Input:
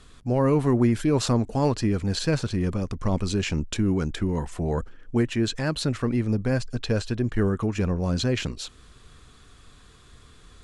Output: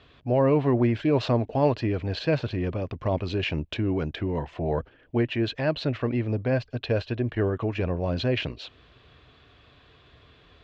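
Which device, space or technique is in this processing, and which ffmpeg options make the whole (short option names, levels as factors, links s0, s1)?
guitar cabinet: -af "highpass=80,equalizer=f=200:t=q:w=4:g=-10,equalizer=f=630:t=q:w=4:g=7,equalizer=f=1300:t=q:w=4:g=-5,equalizer=f=2700:t=q:w=4:g=4,lowpass=f=3800:w=0.5412,lowpass=f=3800:w=1.3066"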